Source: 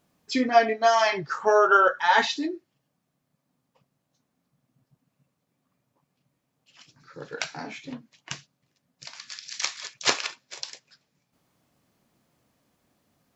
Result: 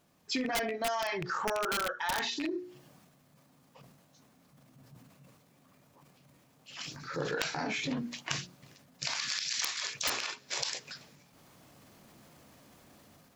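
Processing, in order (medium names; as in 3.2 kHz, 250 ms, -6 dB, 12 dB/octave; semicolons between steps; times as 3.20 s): rattle on loud lows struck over -32 dBFS, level -19 dBFS; hum notches 60/120/180/240/300/360/420/480 Hz; integer overflow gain 11 dB; level rider gain up to 11 dB; transient shaper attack -4 dB, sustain +7 dB; compression 16:1, threshold -31 dBFS, peak gain reduction 24.5 dB; trim +1 dB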